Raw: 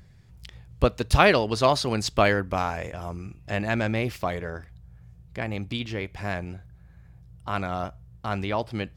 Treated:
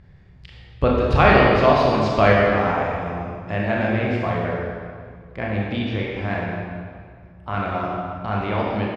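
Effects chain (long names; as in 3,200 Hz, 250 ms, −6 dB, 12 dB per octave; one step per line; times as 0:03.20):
low-pass filter 2,800 Hz 12 dB per octave
in parallel at +2.5 dB: output level in coarse steps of 11 dB
on the sum: double-tracking delay 28 ms −10.5 dB
convolution reverb RT60 2.0 s, pre-delay 27 ms, DRR −3 dB
level −4 dB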